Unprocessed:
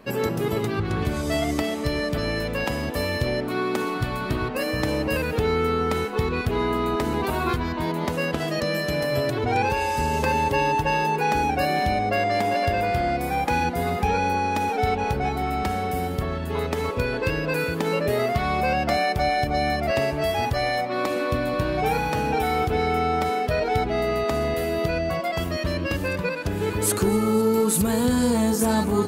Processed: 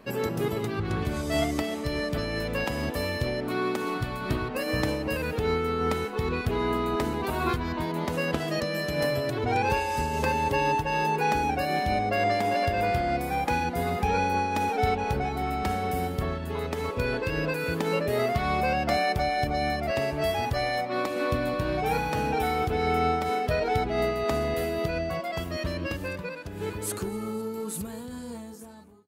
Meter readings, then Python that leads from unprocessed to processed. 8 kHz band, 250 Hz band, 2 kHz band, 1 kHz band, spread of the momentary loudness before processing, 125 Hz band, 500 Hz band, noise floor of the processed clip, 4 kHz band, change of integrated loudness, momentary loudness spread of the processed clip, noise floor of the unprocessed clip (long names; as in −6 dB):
−8.0 dB, −5.5 dB, −3.5 dB, −3.5 dB, 5 LU, −4.0 dB, −4.0 dB, −37 dBFS, −4.0 dB, −4.0 dB, 7 LU, −28 dBFS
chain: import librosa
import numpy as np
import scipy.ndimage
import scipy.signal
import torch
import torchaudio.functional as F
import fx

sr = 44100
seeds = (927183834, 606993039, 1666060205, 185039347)

y = fx.fade_out_tail(x, sr, length_s=4.46)
y = fx.am_noise(y, sr, seeds[0], hz=5.7, depth_pct=60)